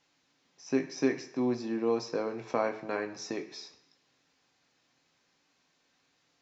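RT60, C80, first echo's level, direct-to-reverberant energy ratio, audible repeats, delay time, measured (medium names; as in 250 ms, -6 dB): 0.80 s, 14.5 dB, no echo, 3.0 dB, no echo, no echo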